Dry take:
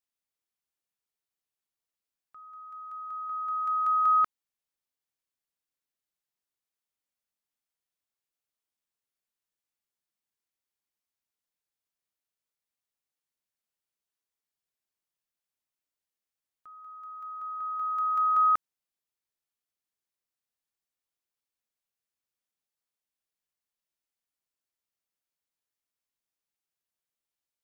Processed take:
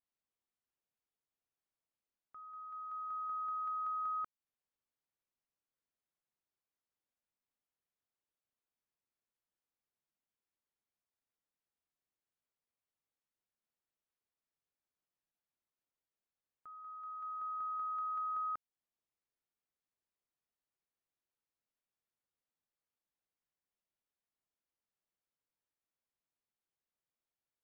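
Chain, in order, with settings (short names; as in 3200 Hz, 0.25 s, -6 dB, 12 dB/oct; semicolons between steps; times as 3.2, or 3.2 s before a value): compressor, threshold -35 dBFS, peak gain reduction 13 dB; LPF 1300 Hz 6 dB/oct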